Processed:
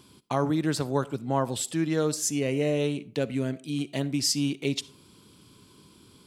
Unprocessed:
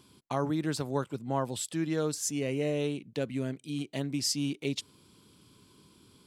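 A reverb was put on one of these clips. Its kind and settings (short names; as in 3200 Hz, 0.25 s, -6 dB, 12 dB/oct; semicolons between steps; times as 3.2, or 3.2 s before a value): digital reverb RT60 0.44 s, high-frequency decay 0.5×, pre-delay 20 ms, DRR 18.5 dB; gain +4.5 dB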